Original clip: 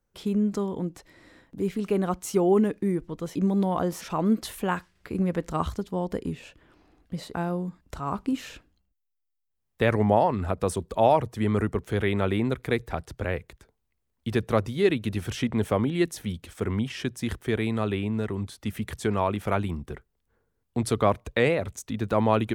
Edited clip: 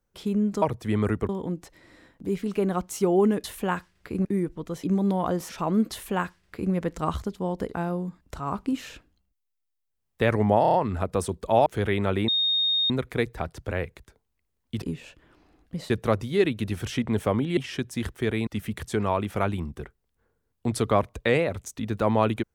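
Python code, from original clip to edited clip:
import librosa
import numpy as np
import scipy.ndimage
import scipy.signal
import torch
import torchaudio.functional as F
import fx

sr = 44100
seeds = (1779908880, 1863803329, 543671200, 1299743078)

y = fx.edit(x, sr, fx.duplicate(start_s=4.44, length_s=0.81, to_s=2.77),
    fx.move(start_s=6.21, length_s=1.08, to_s=14.35),
    fx.stutter(start_s=10.22, slice_s=0.03, count=5),
    fx.move(start_s=11.14, length_s=0.67, to_s=0.62),
    fx.insert_tone(at_s=12.43, length_s=0.62, hz=3700.0, db=-20.5),
    fx.cut(start_s=16.02, length_s=0.81),
    fx.cut(start_s=17.73, length_s=0.85), tone=tone)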